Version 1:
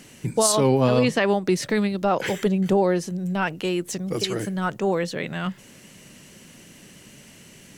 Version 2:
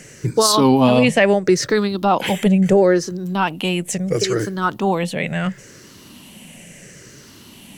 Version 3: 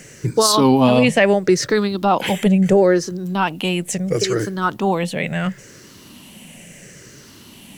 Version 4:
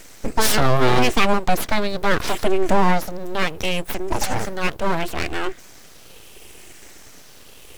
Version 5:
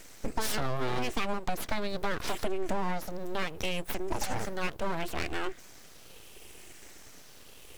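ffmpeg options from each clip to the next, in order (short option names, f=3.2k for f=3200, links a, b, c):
-af "afftfilt=real='re*pow(10,10/40*sin(2*PI*(0.53*log(max(b,1)*sr/1024/100)/log(2)-(-0.73)*(pts-256)/sr)))':imag='im*pow(10,10/40*sin(2*PI*(0.53*log(max(b,1)*sr/1024/100)/log(2)-(-0.73)*(pts-256)/sr)))':win_size=1024:overlap=0.75,volume=4.5dB"
-af "acrusher=bits=8:mix=0:aa=0.5"
-af "aeval=exprs='abs(val(0))':c=same"
-af "acompressor=threshold=-18dB:ratio=6,volume=-7dB"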